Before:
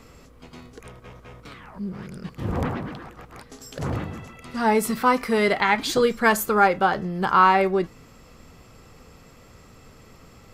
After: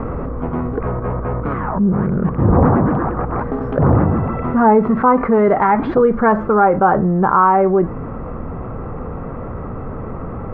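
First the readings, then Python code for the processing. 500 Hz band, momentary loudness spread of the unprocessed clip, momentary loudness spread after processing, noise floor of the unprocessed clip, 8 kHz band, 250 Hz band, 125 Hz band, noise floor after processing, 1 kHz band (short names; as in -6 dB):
+9.0 dB, 18 LU, 16 LU, -50 dBFS, under -40 dB, +11.5 dB, +15.0 dB, -27 dBFS, +6.5 dB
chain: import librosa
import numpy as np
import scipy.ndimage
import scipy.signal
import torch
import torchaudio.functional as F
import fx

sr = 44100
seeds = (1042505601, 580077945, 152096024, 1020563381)

y = fx.rider(x, sr, range_db=10, speed_s=0.5)
y = scipy.signal.sosfilt(scipy.signal.butter(4, 1300.0, 'lowpass', fs=sr, output='sos'), y)
y = fx.env_flatten(y, sr, amount_pct=50)
y = y * 10.0 ** (6.0 / 20.0)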